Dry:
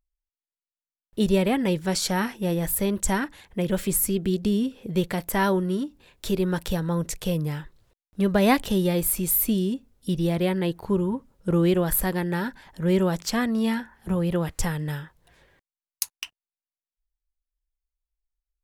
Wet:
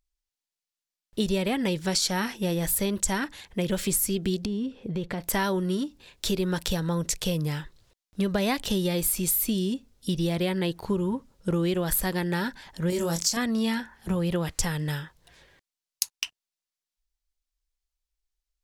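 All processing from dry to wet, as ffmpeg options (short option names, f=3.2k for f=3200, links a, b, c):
-filter_complex "[0:a]asettb=1/sr,asplit=3[a][b][c];[a]atrim=end=4.454[d];[b]atrim=start=4.45:end=5.24,asetpts=PTS-STARTPTS,afade=t=in:d=0.004:c=qsin,afade=t=out:st=0.786:d=0.004:c=qsin,lowpass=f=1.4k:p=1,acompressor=threshold=-26dB:ratio=5:attack=3.2:release=140:knee=1:detection=peak[e];[c]atrim=start=5.236[f];[d][e]acrossfade=d=0.004:c1=hsin:c2=qsin[g];[g][f]acrossfade=d=0.004:c1=qsin:c2=hsin,asettb=1/sr,asplit=3[h][i][j];[h]atrim=end=12.904[k];[i]atrim=start=12.9:end=13.37,asetpts=PTS-STARTPTS,afade=t=in:d=0.004:c=qsin,afade=t=out:st=0.466:d=0.004:c=qsin,highshelf=f=4.5k:t=q:w=1.5:g=9.5,acompressor=threshold=-26dB:ratio=2:attack=3.2:release=140:knee=1:detection=peak,asplit=2[l][m];[m]adelay=24,volume=-5dB[n];[l][n]amix=inputs=2:normalize=0,atrim=end_sample=20727[o];[j]atrim=start=13.366[p];[k][o]acrossfade=d=0.004:c1=hsin:c2=qsin[q];[q][p]acrossfade=d=0.004:c1=qsin:c2=hsin,equalizer=f=5.1k:w=0.63:g=8,acompressor=threshold=-22dB:ratio=6"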